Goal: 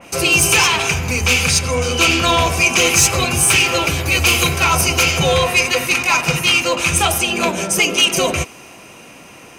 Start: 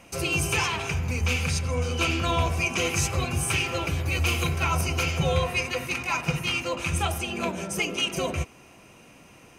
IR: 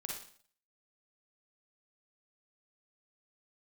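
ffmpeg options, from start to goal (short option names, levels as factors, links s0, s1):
-af "lowshelf=f=160:g=-9.5,aeval=exprs='0.251*sin(PI/2*1.78*val(0)/0.251)':c=same,adynamicequalizer=threshold=0.0355:dfrequency=2900:dqfactor=0.7:tfrequency=2900:tqfactor=0.7:attack=5:release=100:ratio=0.375:range=2.5:mode=boostabove:tftype=highshelf,volume=1.5"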